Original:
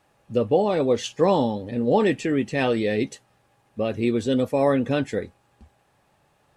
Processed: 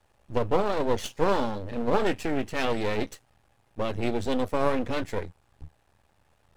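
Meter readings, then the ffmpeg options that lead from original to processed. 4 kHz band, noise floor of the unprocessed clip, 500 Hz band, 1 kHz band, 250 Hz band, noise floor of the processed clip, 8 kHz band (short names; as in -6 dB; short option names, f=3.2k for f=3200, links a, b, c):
-3.0 dB, -65 dBFS, -5.5 dB, -2.0 dB, -7.0 dB, -67 dBFS, -3.5 dB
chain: -af "lowshelf=f=110:t=q:w=1.5:g=10,aeval=exprs='max(val(0),0)':c=same"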